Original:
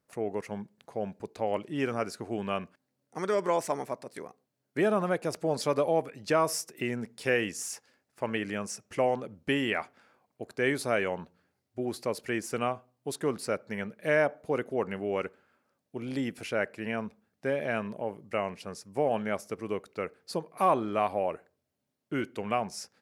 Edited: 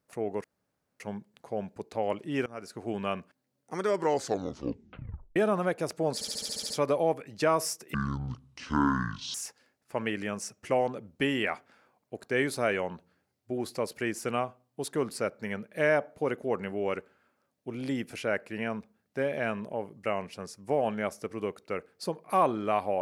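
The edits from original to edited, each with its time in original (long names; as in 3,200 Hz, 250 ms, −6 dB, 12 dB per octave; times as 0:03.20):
0:00.44: splice in room tone 0.56 s
0:01.90–0:02.33: fade in, from −21 dB
0:03.37: tape stop 1.43 s
0:05.58: stutter 0.07 s, 9 plays
0:06.82–0:07.62: play speed 57%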